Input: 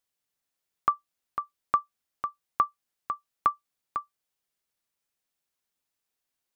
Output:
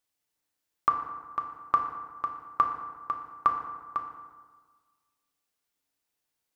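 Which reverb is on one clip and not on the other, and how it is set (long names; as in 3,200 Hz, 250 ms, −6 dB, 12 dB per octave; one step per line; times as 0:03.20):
feedback delay network reverb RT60 1.5 s, low-frequency decay 1.05×, high-frequency decay 0.55×, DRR 2.5 dB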